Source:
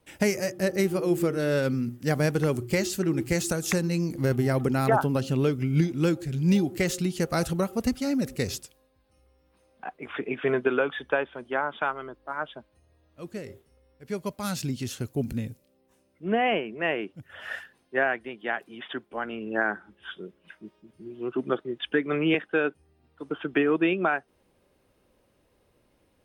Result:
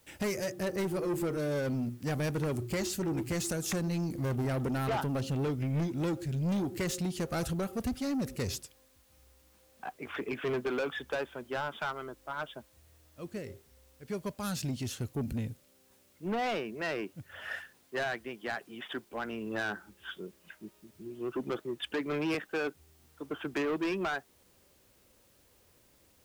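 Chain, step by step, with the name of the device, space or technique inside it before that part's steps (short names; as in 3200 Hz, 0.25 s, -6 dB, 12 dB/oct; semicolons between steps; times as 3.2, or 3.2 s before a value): open-reel tape (soft clip -25.5 dBFS, distortion -9 dB; bell 78 Hz +4 dB 1.06 oct; white noise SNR 32 dB); gain -2.5 dB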